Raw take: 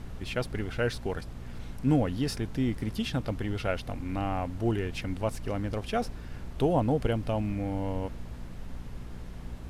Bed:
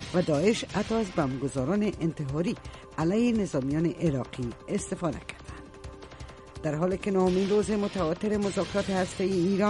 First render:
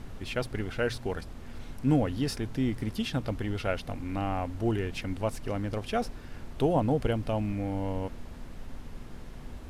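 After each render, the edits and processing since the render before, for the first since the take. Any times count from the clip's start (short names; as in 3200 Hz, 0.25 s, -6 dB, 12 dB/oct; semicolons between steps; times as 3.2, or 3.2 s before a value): de-hum 60 Hz, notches 3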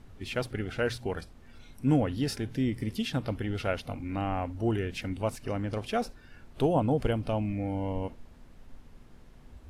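noise print and reduce 10 dB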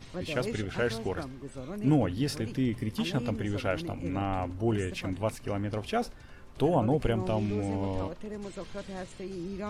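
add bed -12 dB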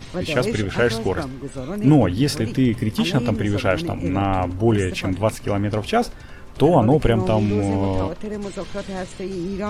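gain +10.5 dB; limiter -3 dBFS, peak gain reduction 1.5 dB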